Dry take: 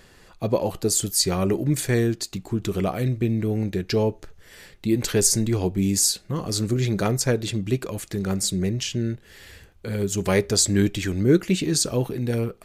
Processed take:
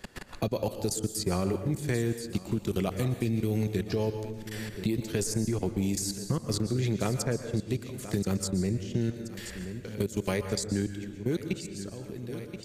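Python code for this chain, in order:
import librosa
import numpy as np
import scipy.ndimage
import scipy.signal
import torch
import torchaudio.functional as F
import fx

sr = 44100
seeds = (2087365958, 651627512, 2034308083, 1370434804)

y = fx.fade_out_tail(x, sr, length_s=3.51)
y = fx.low_shelf(y, sr, hz=380.0, db=2.0)
y = fx.transient(y, sr, attack_db=5, sustain_db=-2)
y = fx.level_steps(y, sr, step_db=24)
y = fx.echo_feedback(y, sr, ms=1028, feedback_pct=32, wet_db=-21)
y = fx.rev_plate(y, sr, seeds[0], rt60_s=0.77, hf_ratio=0.7, predelay_ms=105, drr_db=9.5)
y = fx.band_squash(y, sr, depth_pct=70)
y = y * librosa.db_to_amplitude(-3.5)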